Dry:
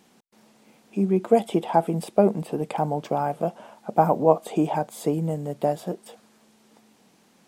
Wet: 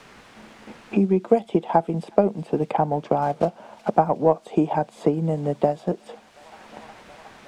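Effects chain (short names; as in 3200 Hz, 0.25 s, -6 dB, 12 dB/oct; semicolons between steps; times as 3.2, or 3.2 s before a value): 3.22–3.91 block floating point 5-bit; expander -47 dBFS; transient shaper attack +4 dB, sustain -4 dB; requantised 10-bit, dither triangular; air absorption 84 m; thin delay 0.363 s, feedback 80%, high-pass 2600 Hz, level -19 dB; three-band squash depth 70%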